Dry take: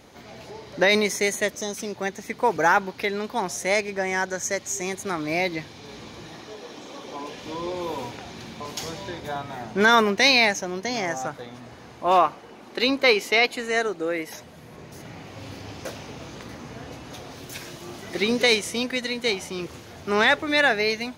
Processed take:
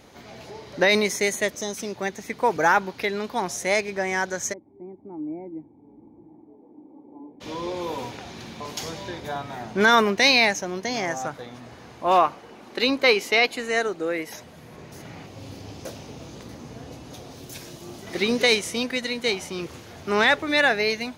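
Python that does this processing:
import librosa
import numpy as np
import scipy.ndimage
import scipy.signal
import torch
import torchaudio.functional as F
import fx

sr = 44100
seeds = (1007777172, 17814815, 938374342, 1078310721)

y = fx.formant_cascade(x, sr, vowel='u', at=(4.52, 7.4), fade=0.02)
y = fx.peak_eq(y, sr, hz=1700.0, db=-7.0, octaves=2.0, at=(15.26, 18.07))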